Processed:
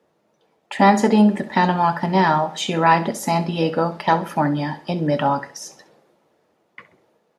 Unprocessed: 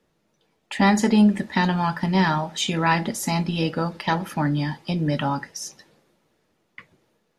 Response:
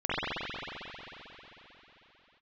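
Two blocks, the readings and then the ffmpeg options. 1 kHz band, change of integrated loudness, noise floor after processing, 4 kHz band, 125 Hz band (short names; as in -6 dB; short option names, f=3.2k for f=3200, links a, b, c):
+7.0 dB, +3.5 dB, -66 dBFS, -0.5 dB, 0.0 dB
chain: -filter_complex "[0:a]highpass=82,equalizer=f=660:w=0.6:g=10.5,asplit=2[a][b];[b]aecho=0:1:66|132|198:0.168|0.0571|0.0194[c];[a][c]amix=inputs=2:normalize=0,volume=-2dB"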